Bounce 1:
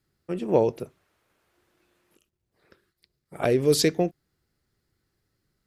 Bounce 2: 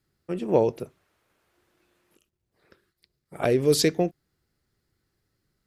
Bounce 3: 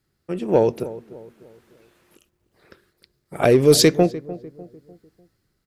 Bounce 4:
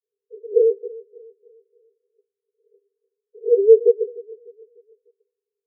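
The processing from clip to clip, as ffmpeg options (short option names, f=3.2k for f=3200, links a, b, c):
-af anull
-filter_complex "[0:a]dynaudnorm=f=200:g=7:m=6.5dB,asplit=2[a][b];[b]asoftclip=type=hard:threshold=-13.5dB,volume=-9.5dB[c];[a][c]amix=inputs=2:normalize=0,asplit=2[d][e];[e]adelay=299,lowpass=f=970:p=1,volume=-15.5dB,asplit=2[f][g];[g]adelay=299,lowpass=f=970:p=1,volume=0.44,asplit=2[h][i];[i]adelay=299,lowpass=f=970:p=1,volume=0.44,asplit=2[j][k];[k]adelay=299,lowpass=f=970:p=1,volume=0.44[l];[d][f][h][j][l]amix=inputs=5:normalize=0"
-filter_complex "[0:a]asplit=2[a][b];[b]acrusher=bits=2:mix=0:aa=0.5,volume=-4dB[c];[a][c]amix=inputs=2:normalize=0,asuperpass=centerf=440:order=20:qfactor=4.4"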